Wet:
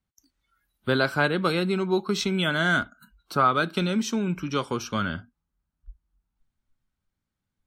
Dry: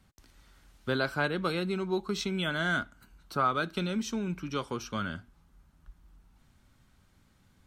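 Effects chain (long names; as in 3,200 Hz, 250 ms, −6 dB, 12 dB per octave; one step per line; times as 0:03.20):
noise reduction from a noise print of the clip's start 26 dB
level +6.5 dB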